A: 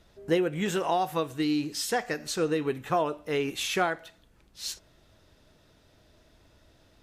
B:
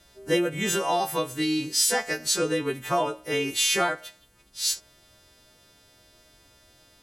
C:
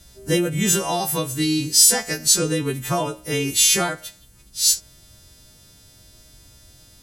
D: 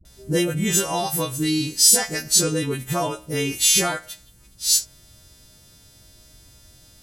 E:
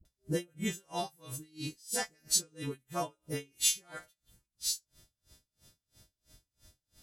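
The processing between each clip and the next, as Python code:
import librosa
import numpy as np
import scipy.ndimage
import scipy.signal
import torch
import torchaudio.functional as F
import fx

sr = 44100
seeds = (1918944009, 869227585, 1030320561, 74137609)

y1 = fx.freq_snap(x, sr, grid_st=2)
y1 = y1 * librosa.db_to_amplitude(1.5)
y2 = fx.bass_treble(y1, sr, bass_db=13, treble_db=11)
y3 = fx.dispersion(y2, sr, late='highs', ms=51.0, hz=500.0)
y3 = y3 * librosa.db_to_amplitude(-1.0)
y4 = y3 * 10.0 ** (-34 * (0.5 - 0.5 * np.cos(2.0 * np.pi * 3.0 * np.arange(len(y3)) / sr)) / 20.0)
y4 = y4 * librosa.db_to_amplitude(-8.5)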